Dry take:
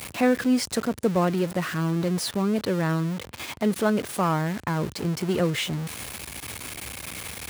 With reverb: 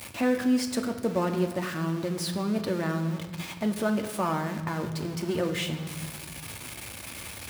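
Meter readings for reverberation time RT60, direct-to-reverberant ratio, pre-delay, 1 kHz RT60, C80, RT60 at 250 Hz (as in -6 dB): 1.3 s, 4.5 dB, 3 ms, 1.2 s, 11.0 dB, 1.7 s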